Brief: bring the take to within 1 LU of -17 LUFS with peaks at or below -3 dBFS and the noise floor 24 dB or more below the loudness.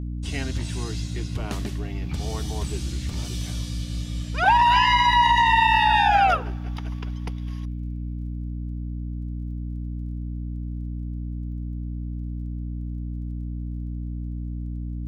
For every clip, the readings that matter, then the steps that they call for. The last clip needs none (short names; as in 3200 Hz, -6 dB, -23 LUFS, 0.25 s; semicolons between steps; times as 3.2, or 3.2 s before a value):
ticks 21/s; hum 60 Hz; harmonics up to 300 Hz; hum level -28 dBFS; loudness -25.0 LUFS; peak -7.5 dBFS; loudness target -17.0 LUFS
-> de-click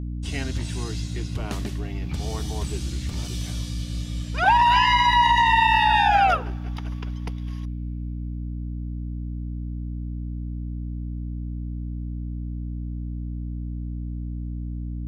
ticks 0/s; hum 60 Hz; harmonics up to 300 Hz; hum level -28 dBFS
-> de-hum 60 Hz, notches 5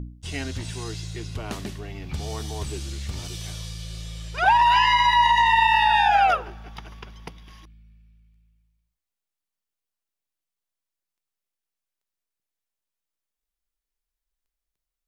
hum none; loudness -20.5 LUFS; peak -7.0 dBFS; loudness target -17.0 LUFS
-> gain +3.5 dB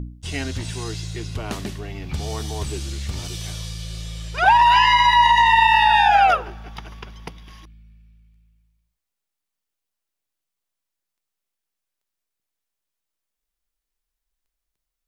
loudness -17.0 LUFS; peak -3.5 dBFS; noise floor -83 dBFS